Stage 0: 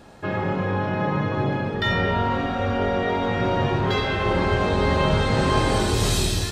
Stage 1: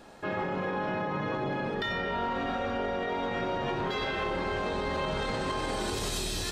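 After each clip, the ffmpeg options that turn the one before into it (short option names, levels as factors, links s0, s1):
-af "equalizer=f=100:w=0.78:g=-9,bandreject=f=50:t=h:w=6,bandreject=f=100:t=h:w=6,alimiter=limit=0.0944:level=0:latency=1:release=60,volume=0.75"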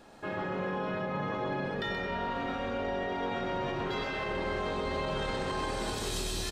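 -af "aecho=1:1:129:0.596,volume=0.668"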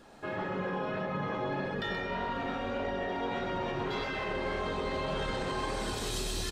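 -af "flanger=delay=0.6:depth=7.7:regen=-47:speed=1.7:shape=sinusoidal,volume=1.5"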